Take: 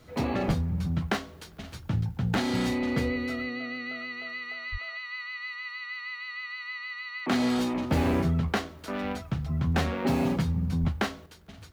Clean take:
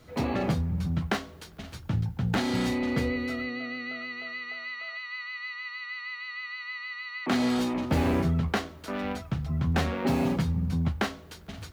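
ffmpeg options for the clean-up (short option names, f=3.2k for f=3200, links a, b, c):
-filter_complex "[0:a]adeclick=t=4,asplit=3[a][b][c];[a]afade=t=out:st=0.47:d=0.02[d];[b]highpass=f=140:w=0.5412,highpass=f=140:w=1.3066,afade=t=in:st=0.47:d=0.02,afade=t=out:st=0.59:d=0.02[e];[c]afade=t=in:st=0.59:d=0.02[f];[d][e][f]amix=inputs=3:normalize=0,asplit=3[g][h][i];[g]afade=t=out:st=4.71:d=0.02[j];[h]highpass=f=140:w=0.5412,highpass=f=140:w=1.3066,afade=t=in:st=4.71:d=0.02,afade=t=out:st=4.83:d=0.02[k];[i]afade=t=in:st=4.83:d=0.02[l];[j][k][l]amix=inputs=3:normalize=0,asplit=3[m][n][o];[m]afade=t=out:st=10.8:d=0.02[p];[n]highpass=f=140:w=0.5412,highpass=f=140:w=1.3066,afade=t=in:st=10.8:d=0.02,afade=t=out:st=10.92:d=0.02[q];[o]afade=t=in:st=10.92:d=0.02[r];[p][q][r]amix=inputs=3:normalize=0,asetnsamples=n=441:p=0,asendcmd='11.26 volume volume 6.5dB',volume=0dB"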